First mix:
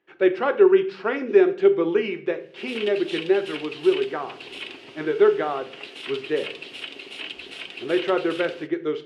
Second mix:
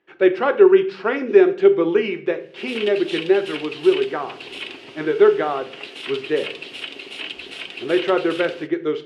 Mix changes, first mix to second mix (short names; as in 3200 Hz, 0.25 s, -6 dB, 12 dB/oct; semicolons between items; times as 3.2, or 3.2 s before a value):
speech +3.5 dB; background +3.5 dB